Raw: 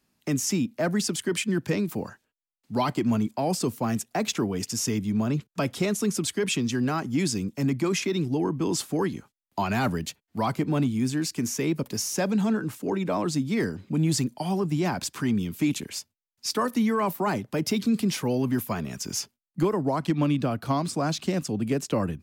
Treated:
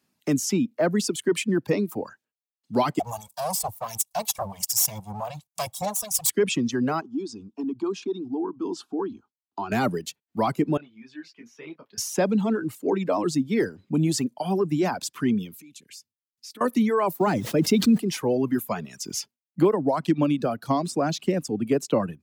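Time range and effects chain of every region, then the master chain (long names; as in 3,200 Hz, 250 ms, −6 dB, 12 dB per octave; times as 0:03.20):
0:02.99–0:06.30: lower of the sound and its delayed copy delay 1.8 ms + drawn EQ curve 170 Hz 0 dB, 410 Hz −21 dB, 770 Hz +10 dB, 1,600 Hz −7 dB, 9,300 Hz +14 dB + two-band tremolo in antiphase 1.4 Hz, depth 50%, crossover 1,800 Hz
0:07.01–0:09.72: low-pass filter 3,500 Hz + downward compressor 3 to 1, threshold −26 dBFS + phaser with its sweep stopped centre 550 Hz, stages 6
0:10.77–0:11.98: high-pass filter 1,000 Hz 6 dB per octave + high-frequency loss of the air 310 metres + micro pitch shift up and down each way 14 cents
0:15.55–0:16.61: downward compressor 4 to 1, threshold −40 dBFS + parametric band 800 Hz −12 dB 1.7 octaves
0:17.19–0:17.97: low-shelf EQ 200 Hz +7 dB + background noise pink −48 dBFS + level that may fall only so fast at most 45 dB per second
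whole clip: high-pass filter 110 Hz; reverb reduction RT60 1.5 s; dynamic equaliser 430 Hz, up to +6 dB, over −39 dBFS, Q 0.71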